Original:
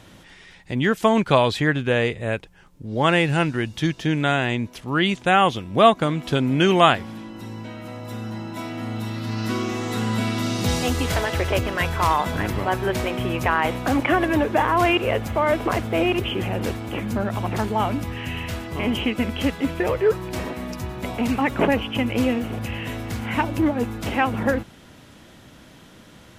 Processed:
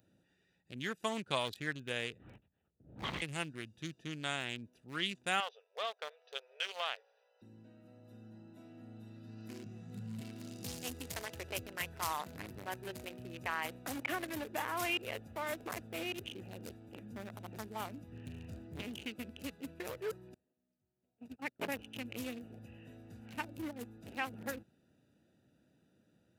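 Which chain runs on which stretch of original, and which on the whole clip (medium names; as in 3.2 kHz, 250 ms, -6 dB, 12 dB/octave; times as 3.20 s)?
2.18–3.22 s: comb filter that takes the minimum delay 0.95 ms + LPC vocoder at 8 kHz whisper
5.40–7.42 s: brick-wall FIR band-pass 410–6200 Hz + compression 4:1, threshold -16 dBFS
9.64–10.21 s: resonant low shelf 230 Hz +8 dB, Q 3 + detune thickener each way 24 cents
18.12–18.82 s: bass shelf 400 Hz +9 dB + loudspeaker Doppler distortion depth 0.31 ms
20.34–21.79 s: gate -21 dBFS, range -31 dB + high-pass 55 Hz
whole clip: local Wiener filter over 41 samples; high-pass 97 Hz; pre-emphasis filter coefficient 0.9; trim -1.5 dB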